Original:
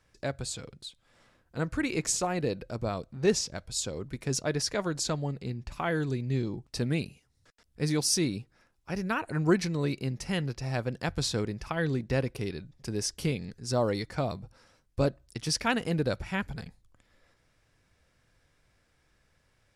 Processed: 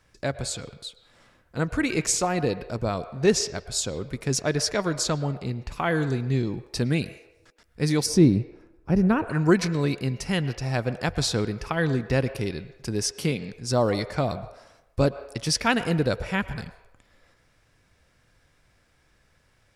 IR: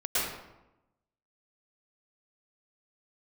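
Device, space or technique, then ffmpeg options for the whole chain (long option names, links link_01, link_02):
filtered reverb send: -filter_complex "[0:a]asplit=2[link_01][link_02];[link_02]highpass=frequency=450:width=0.5412,highpass=frequency=450:width=1.3066,lowpass=3300[link_03];[1:a]atrim=start_sample=2205[link_04];[link_03][link_04]afir=irnorm=-1:irlink=0,volume=-22dB[link_05];[link_01][link_05]amix=inputs=2:normalize=0,asettb=1/sr,asplit=3[link_06][link_07][link_08];[link_06]atrim=end=8.064[link_09];[link_07]atrim=start=8.06:end=9.3,asetpts=PTS-STARTPTS,afade=type=in:duration=0.004:curve=qsin,afade=type=out:start_time=1.236:duration=0.004:curve=qsin,tiltshelf=frequency=850:gain=9.5[link_10];[link_08]atrim=start=9.296[link_11];[link_09][link_10]acrossfade=duration=0.004:curve1=hsin:curve2=qsin[link_12];[link_12][link_11]acrossfade=duration=0.004:curve1=qsin:curve2=hsin,asettb=1/sr,asplit=3[link_13][link_14][link_15];[link_13]atrim=end=13.114[link_16];[link_14]atrim=start=13.11:end=13.51,asetpts=PTS-STARTPTS,afade=type=in:duration=0.004:curve=qsin,afade=type=out:start_time=0.396:duration=0.004:curve=qsin,highpass=130[link_17];[link_15]atrim=start=13.506[link_18];[link_16][link_17]acrossfade=duration=0.004:curve1=hsin:curve2=qsin[link_19];[link_19][link_18]acrossfade=duration=0.004:curve1=qsin:curve2=hsin,volume=5dB"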